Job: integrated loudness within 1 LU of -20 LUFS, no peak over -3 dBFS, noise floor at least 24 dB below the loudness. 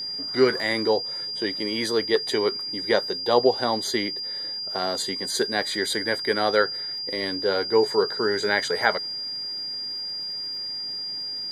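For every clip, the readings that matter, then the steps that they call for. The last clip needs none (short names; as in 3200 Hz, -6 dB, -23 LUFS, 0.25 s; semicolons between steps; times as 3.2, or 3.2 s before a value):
ticks 46/s; steady tone 4800 Hz; tone level -29 dBFS; loudness -24.5 LUFS; peak -4.5 dBFS; loudness target -20.0 LUFS
-> de-click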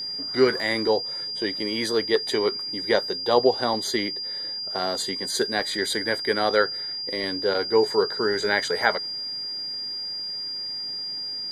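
ticks 0.087/s; steady tone 4800 Hz; tone level -29 dBFS
-> notch 4800 Hz, Q 30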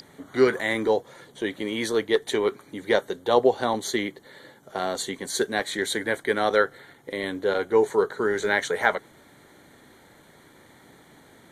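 steady tone none; loudness -25.0 LUFS; peak -4.5 dBFS; loudness target -20.0 LUFS
-> gain +5 dB; limiter -3 dBFS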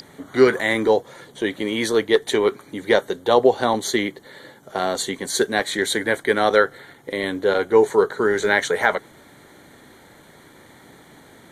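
loudness -20.5 LUFS; peak -3.0 dBFS; noise floor -49 dBFS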